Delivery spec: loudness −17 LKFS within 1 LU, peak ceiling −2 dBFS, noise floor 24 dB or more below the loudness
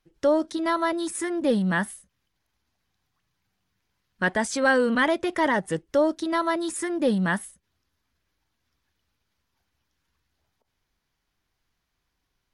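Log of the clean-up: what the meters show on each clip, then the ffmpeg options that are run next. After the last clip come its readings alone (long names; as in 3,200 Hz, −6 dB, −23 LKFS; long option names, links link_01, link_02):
integrated loudness −24.5 LKFS; sample peak −11.5 dBFS; target loudness −17.0 LKFS
→ -af "volume=7.5dB"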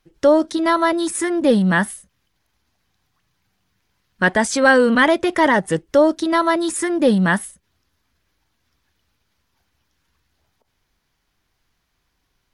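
integrated loudness −17.0 LKFS; sample peak −4.0 dBFS; background noise floor −71 dBFS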